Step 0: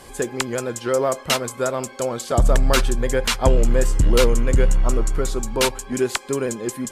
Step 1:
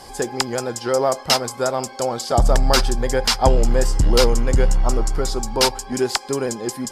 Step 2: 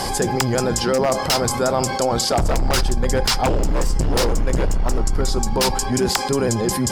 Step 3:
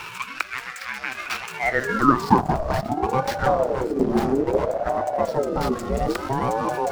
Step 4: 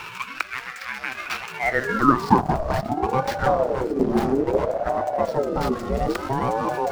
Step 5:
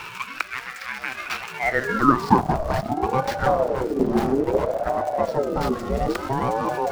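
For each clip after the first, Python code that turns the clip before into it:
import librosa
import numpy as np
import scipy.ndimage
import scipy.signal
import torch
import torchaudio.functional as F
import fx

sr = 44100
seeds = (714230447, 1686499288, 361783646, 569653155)

y1 = fx.graphic_eq_31(x, sr, hz=(800, 2500, 5000), db=(10, -3, 12))
y2 = fx.octave_divider(y1, sr, octaves=1, level_db=0.0)
y2 = 10.0 ** (-10.0 / 20.0) * (np.abs((y2 / 10.0 ** (-10.0 / 20.0) + 3.0) % 4.0 - 2.0) - 1.0)
y2 = fx.env_flatten(y2, sr, amount_pct=70)
y2 = y2 * 10.0 ** (-3.0 / 20.0)
y3 = scipy.signal.medfilt(y2, 15)
y3 = fx.filter_sweep_highpass(y3, sr, from_hz=1900.0, to_hz=67.0, start_s=1.49, end_s=3.65, q=6.3)
y3 = fx.ring_lfo(y3, sr, carrier_hz=490.0, swing_pct=40, hz=0.6)
y3 = y3 * 10.0 ** (-2.0 / 20.0)
y4 = scipy.signal.medfilt(y3, 5)
y5 = fx.dmg_crackle(y4, sr, seeds[0], per_s=120.0, level_db=-33.0)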